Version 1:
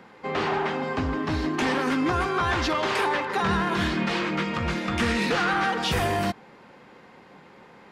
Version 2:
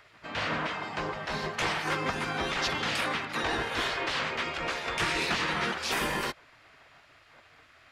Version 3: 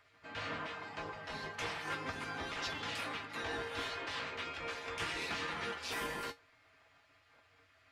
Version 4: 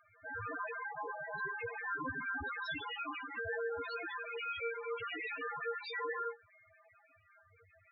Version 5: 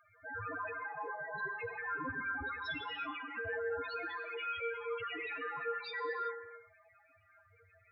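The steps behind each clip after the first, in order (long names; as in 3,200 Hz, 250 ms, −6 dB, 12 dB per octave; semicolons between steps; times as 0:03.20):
gate on every frequency bin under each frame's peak −10 dB weak
tuned comb filter 93 Hz, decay 0.16 s, harmonics odd, mix 80%; level −2.5 dB
brickwall limiter −33 dBFS, peak gain reduction 6 dB; harmonic generator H 8 −34 dB, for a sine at −32.5 dBFS; spectral peaks only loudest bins 4; level +10 dB
reverb whose tail is shaped and stops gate 400 ms flat, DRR 11 dB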